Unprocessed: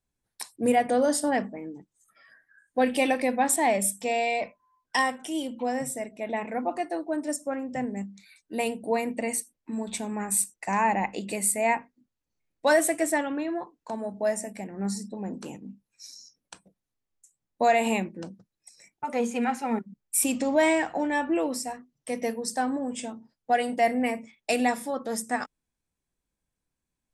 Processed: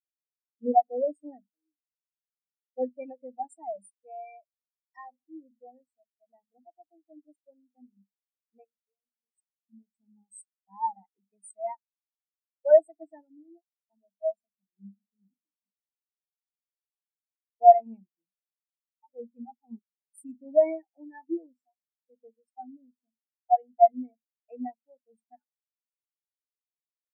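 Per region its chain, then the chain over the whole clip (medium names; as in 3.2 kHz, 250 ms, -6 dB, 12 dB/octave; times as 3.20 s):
4.99–5.67 s: band-pass filter 620 Hz, Q 0.54 + level flattener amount 50%
8.64–9.38 s: compression 10:1, threshold -34 dBFS + hum notches 50/100/150/200/250/300/350 Hz
whole clip: treble shelf 4.7 kHz +6 dB; spectral contrast expander 4:1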